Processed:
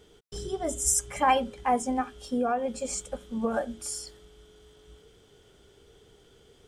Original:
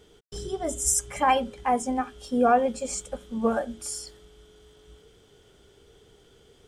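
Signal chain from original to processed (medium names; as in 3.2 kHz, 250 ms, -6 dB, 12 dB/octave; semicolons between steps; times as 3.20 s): 2.19–3.54 s: compression 6:1, threshold -23 dBFS, peak gain reduction 8 dB; trim -1 dB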